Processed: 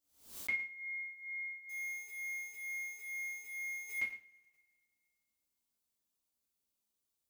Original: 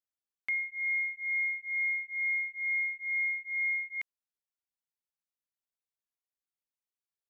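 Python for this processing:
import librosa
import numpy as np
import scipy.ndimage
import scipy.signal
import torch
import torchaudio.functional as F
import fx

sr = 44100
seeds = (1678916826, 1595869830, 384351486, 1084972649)

y = fx.zero_step(x, sr, step_db=-51.5, at=(1.69, 3.98))
y = fx.peak_eq(y, sr, hz=1700.0, db=-10.5, octaves=1.9)
y = fx.rev_double_slope(y, sr, seeds[0], early_s=0.36, late_s=1.8, knee_db=-25, drr_db=-7.0)
y = fx.transient(y, sr, attack_db=1, sustain_db=-3)
y = y + 10.0 ** (-14.5 / 20.0) * np.pad(y, (int(111 * sr / 1000.0), 0))[:len(y)]
y = fx.pre_swell(y, sr, db_per_s=110.0)
y = y * 10.0 ** (2.0 / 20.0)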